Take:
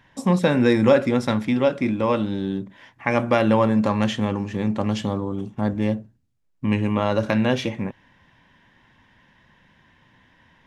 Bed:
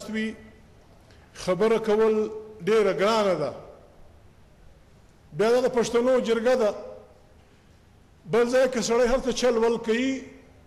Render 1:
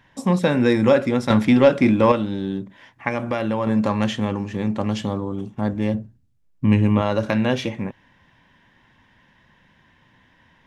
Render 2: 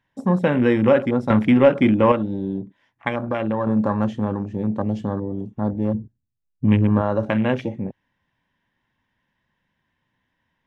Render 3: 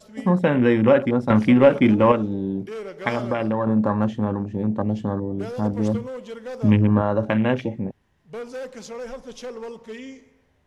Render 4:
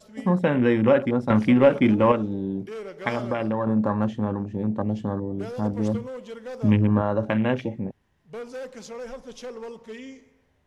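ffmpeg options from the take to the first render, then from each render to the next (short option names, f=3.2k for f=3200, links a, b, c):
-filter_complex "[0:a]asettb=1/sr,asplit=3[a][b][c];[a]atrim=end=1.304[d];[b]atrim=start=1.3:end=2.12,asetpts=PTS-STARTPTS,afade=t=in:d=0.004:c=qsin,afade=t=out:st=0.816:d=0.004:c=qsin,acontrast=73[e];[c]atrim=start=2.116[f];[d][e]acrossfade=d=0.004:c1=hsin:c2=qsin[g];[g][f]acrossfade=d=0.004:c1=qsin:c2=hsin,asettb=1/sr,asplit=3[h][i][j];[h]atrim=end=3.084[k];[i]atrim=start=3.08:end=3.67,asetpts=PTS-STARTPTS,afade=t=in:d=0.004:c=qsin,afade=t=out:st=0.586:d=0.004:c=qsin,acompressor=threshold=-22dB:ratio=2:attack=3.2:release=140:knee=1:detection=peak[l];[j]atrim=start=3.666[m];[k][l]acrossfade=d=0.004:c1=hsin:c2=qsin[n];[n][m]acrossfade=d=0.004:c1=qsin:c2=hsin,asettb=1/sr,asplit=3[o][p][q];[o]atrim=end=5.944[r];[p]atrim=start=5.94:end=7.02,asetpts=PTS-STARTPTS,afade=t=in:d=0.004:c=qsin,afade=t=out:st=1.076:d=0.004:c=qsin,lowshelf=f=240:g=8.5[s];[q]atrim=start=7.016[t];[r][s]acrossfade=d=0.004:c1=hsin:c2=qsin[u];[u][t]acrossfade=d=0.004:c1=qsin:c2=hsin"
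-af "afwtdn=0.0316"
-filter_complex "[1:a]volume=-12.5dB[a];[0:a][a]amix=inputs=2:normalize=0"
-af "volume=-2.5dB"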